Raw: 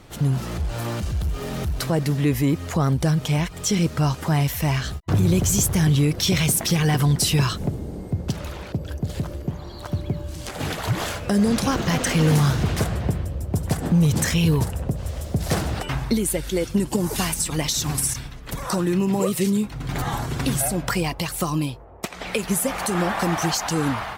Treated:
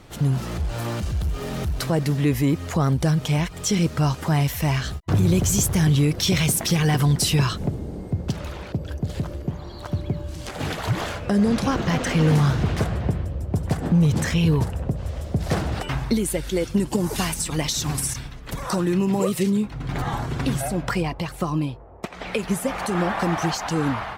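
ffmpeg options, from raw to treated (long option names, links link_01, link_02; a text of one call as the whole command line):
ffmpeg -i in.wav -af "asetnsamples=nb_out_samples=441:pad=0,asendcmd='7.35 lowpass f 6400;11.01 lowpass f 3300;15.72 lowpass f 7800;19.43 lowpass f 3200;21.02 lowpass f 1800;22.13 lowpass f 3300',lowpass=frequency=12000:poles=1" out.wav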